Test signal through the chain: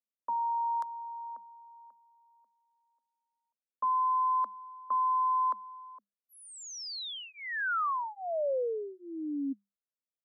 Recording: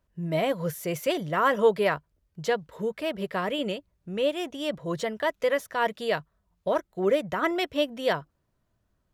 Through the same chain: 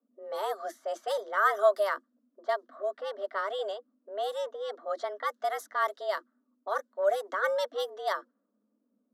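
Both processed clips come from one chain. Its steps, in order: level-controlled noise filter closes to 580 Hz, open at -21.5 dBFS; static phaser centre 610 Hz, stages 6; frequency shift +200 Hz

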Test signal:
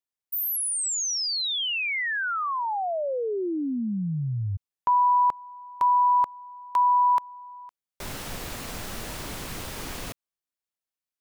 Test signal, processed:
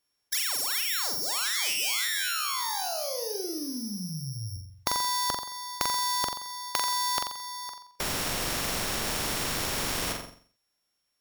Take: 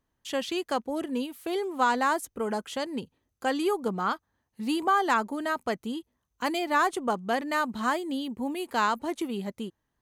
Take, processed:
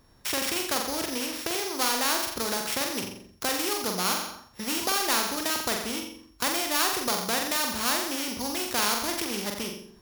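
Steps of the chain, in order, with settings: sorted samples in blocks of 8 samples; in parallel at 0 dB: compression, threshold -33 dBFS; on the sum: flutter echo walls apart 7.5 m, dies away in 0.46 s; spectrum-flattening compressor 2:1

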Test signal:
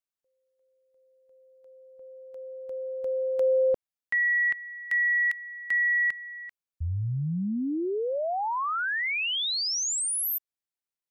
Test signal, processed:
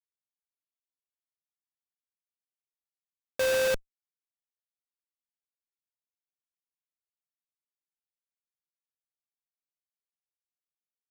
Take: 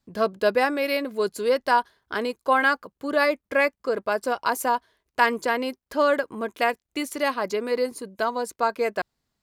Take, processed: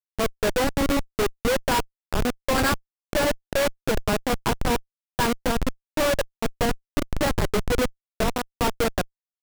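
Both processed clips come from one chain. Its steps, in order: Schmitt trigger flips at -21 dBFS; sample-rate reducer 6.3 kHz, jitter 20%; trim +4.5 dB

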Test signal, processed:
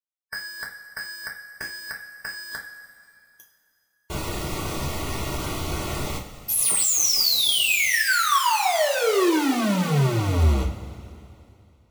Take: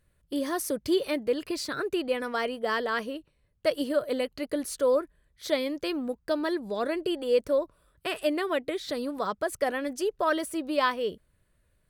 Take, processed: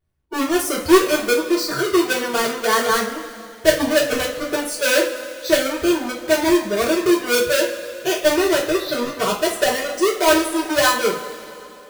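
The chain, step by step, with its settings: square wave that keeps the level; spectral noise reduction 17 dB; two-slope reverb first 0.3 s, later 2.7 s, from -18 dB, DRR -3 dB; trim +2 dB

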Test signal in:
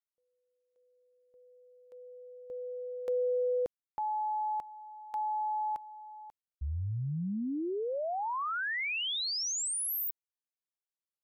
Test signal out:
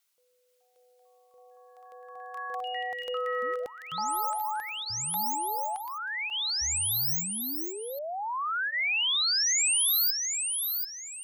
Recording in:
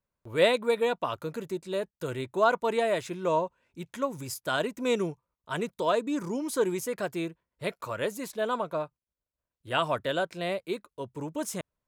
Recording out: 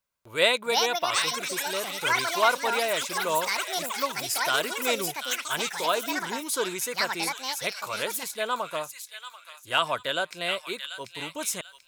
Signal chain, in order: tilt shelf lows -8 dB, about 780 Hz; band-stop 1.8 kHz, Q 14; reverse; upward compressor 1.5:1, threshold -43 dBFS; reverse; feedback echo behind a high-pass 738 ms, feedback 32%, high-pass 1.9 kHz, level -5 dB; ever faster or slower copies 486 ms, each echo +7 st, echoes 3

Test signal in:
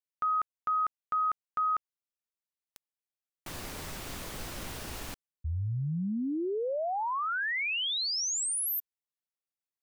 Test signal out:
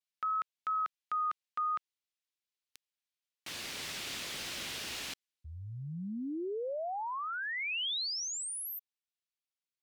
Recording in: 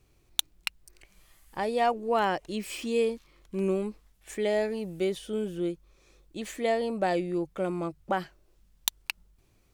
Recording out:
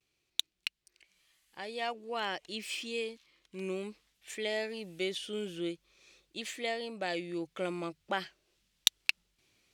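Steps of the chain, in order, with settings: vibrato 0.51 Hz 38 cents; frequency weighting D; gain riding within 5 dB 0.5 s; trim -9.5 dB

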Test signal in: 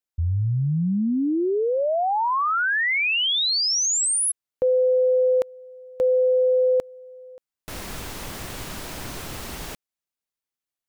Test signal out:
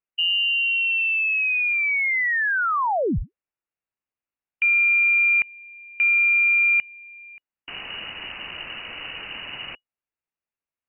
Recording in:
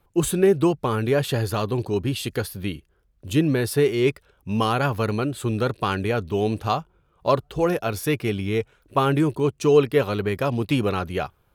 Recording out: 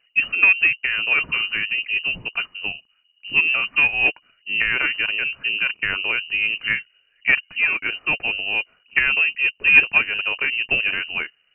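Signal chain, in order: Chebyshev shaper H 3 -17 dB, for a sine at -6.5 dBFS; frequency inversion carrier 2.9 kHz; trim +4.5 dB

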